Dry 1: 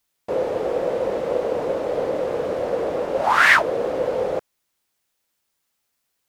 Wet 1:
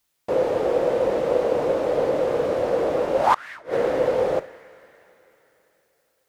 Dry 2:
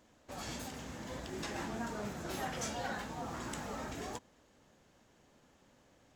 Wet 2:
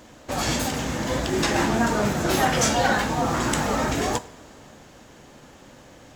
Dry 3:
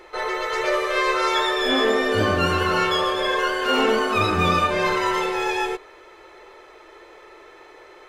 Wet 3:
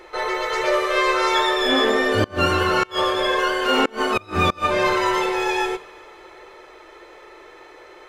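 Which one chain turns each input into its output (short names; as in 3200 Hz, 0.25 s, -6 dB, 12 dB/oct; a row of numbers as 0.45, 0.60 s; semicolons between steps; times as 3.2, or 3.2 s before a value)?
two-slope reverb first 0.42 s, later 3.6 s, from -18 dB, DRR 12.5 dB; flipped gate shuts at -8 dBFS, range -27 dB; normalise peaks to -6 dBFS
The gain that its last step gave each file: +1.5, +18.0, +1.5 dB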